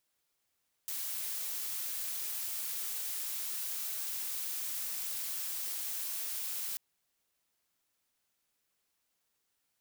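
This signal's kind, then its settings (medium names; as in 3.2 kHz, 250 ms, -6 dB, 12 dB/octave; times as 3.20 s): noise blue, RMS -37.5 dBFS 5.89 s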